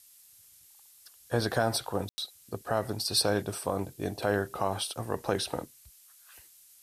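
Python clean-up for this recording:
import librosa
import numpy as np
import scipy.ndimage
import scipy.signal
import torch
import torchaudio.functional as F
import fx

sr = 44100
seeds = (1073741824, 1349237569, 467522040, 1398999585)

y = fx.fix_ambience(x, sr, seeds[0], print_start_s=0.5, print_end_s=1.0, start_s=2.09, end_s=2.18)
y = fx.noise_reduce(y, sr, print_start_s=0.5, print_end_s=1.0, reduce_db=19.0)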